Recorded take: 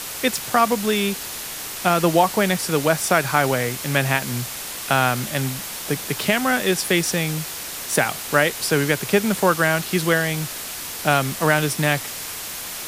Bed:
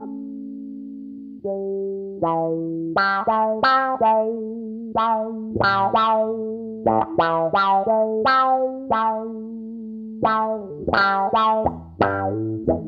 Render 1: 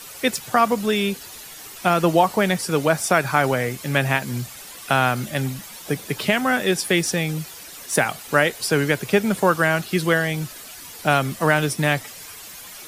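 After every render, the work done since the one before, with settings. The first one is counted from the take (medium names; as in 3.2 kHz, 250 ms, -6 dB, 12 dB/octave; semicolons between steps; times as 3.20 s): noise reduction 11 dB, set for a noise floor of -32 dBFS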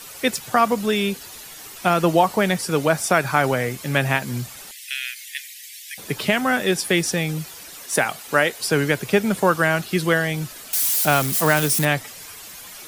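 4.71–5.98 s: steep high-pass 1.8 kHz 72 dB/octave; 7.78–8.64 s: bass shelf 150 Hz -9 dB; 10.73–11.85 s: zero-crossing glitches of -16.5 dBFS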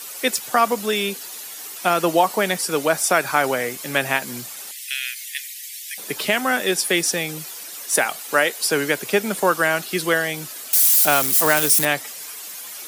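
high-pass 270 Hz 12 dB/octave; treble shelf 5.4 kHz +6.5 dB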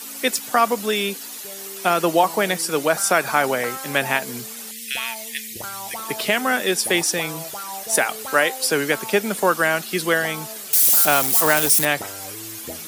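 add bed -16.5 dB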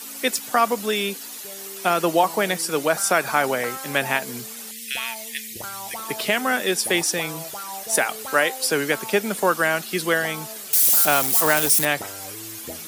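trim -1.5 dB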